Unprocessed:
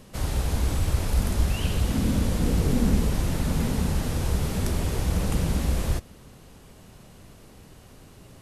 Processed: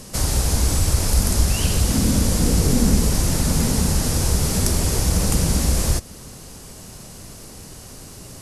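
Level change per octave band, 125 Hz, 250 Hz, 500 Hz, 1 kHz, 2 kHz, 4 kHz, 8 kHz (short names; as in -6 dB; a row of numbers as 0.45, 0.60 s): +5.0, +5.0, +5.0, +5.0, +5.0, +10.5, +15.0 dB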